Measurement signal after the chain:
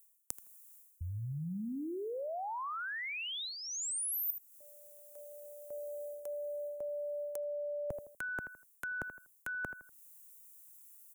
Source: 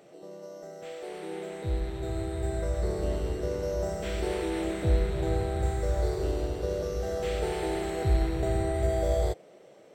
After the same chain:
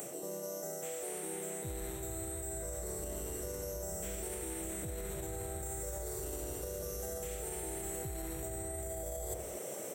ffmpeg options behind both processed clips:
-filter_complex "[0:a]asplit=2[a][b];[b]adelay=81,lowpass=f=1.3k:p=1,volume=-18dB,asplit=2[c][d];[d]adelay=81,lowpass=f=1.3k:p=1,volume=0.36,asplit=2[e][f];[f]adelay=81,lowpass=f=1.3k:p=1,volume=0.36[g];[a][c][e][g]amix=inputs=4:normalize=0,alimiter=limit=-23.5dB:level=0:latency=1:release=29,acrossover=split=160|750[h][i][j];[h]acompressor=threshold=-43dB:ratio=4[k];[i]acompressor=threshold=-42dB:ratio=4[l];[j]acompressor=threshold=-49dB:ratio=4[m];[k][l][m]amix=inputs=3:normalize=0,aexciter=amount=11.8:drive=5.5:freq=6.7k,areverse,acompressor=threshold=-53dB:ratio=6,areverse,volume=14dB"

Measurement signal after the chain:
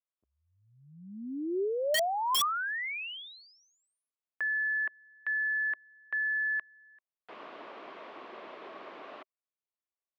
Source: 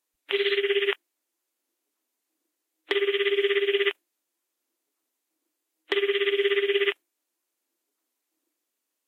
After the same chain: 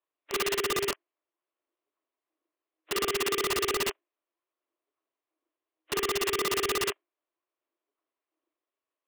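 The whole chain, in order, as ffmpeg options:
-filter_complex "[0:a]acrossover=split=2500[a][b];[b]acompressor=threshold=-39dB:ratio=4:attack=1:release=60[c];[a][c]amix=inputs=2:normalize=0,highpass=f=270:w=0.5412,highpass=f=270:w=1.3066,equalizer=f=390:t=q:w=4:g=5,equalizer=f=630:t=q:w=4:g=8,equalizer=f=1.1k:t=q:w=4:g=9,lowpass=f=3.2k:w=0.5412,lowpass=f=3.2k:w=1.3066,aeval=exprs='(mod(6.31*val(0)+1,2)-1)/6.31':c=same,volume=-7.5dB"

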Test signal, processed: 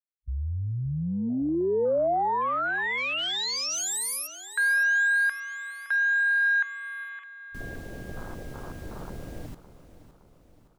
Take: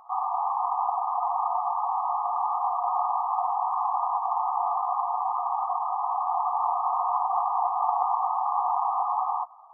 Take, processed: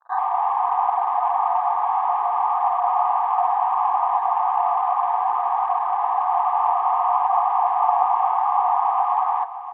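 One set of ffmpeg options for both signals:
-filter_complex "[0:a]afwtdn=0.0141,adynamicequalizer=threshold=0.00891:dfrequency=560:dqfactor=0.73:tfrequency=560:tqfactor=0.73:attack=5:release=100:ratio=0.375:range=3:mode=boostabove:tftype=bell,asplit=2[a][b];[b]aecho=0:1:565|1130|1695|2260|2825:0.2|0.104|0.054|0.0281|0.0146[c];[a][c]amix=inputs=2:normalize=0,volume=2dB"

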